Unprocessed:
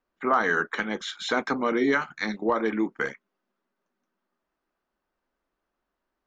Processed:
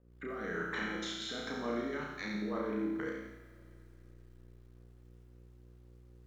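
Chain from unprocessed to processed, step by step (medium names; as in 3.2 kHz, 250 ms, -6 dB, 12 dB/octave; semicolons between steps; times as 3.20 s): bass shelf 310 Hz +7.5 dB; compression 6:1, threshold -29 dBFS, peak gain reduction 13 dB; peak limiter -27.5 dBFS, peak gain reduction 10 dB; level held to a coarse grid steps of 21 dB; mains buzz 60 Hz, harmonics 9, -67 dBFS -4 dB/octave; rotary cabinet horn 1 Hz, later 5.5 Hz, at 1.85 s; flutter echo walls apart 5.8 m, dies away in 0.72 s; Schroeder reverb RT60 3.4 s, combs from 25 ms, DRR 14.5 dB; bit-crushed delay 86 ms, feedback 55%, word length 12-bit, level -7 dB; trim +3 dB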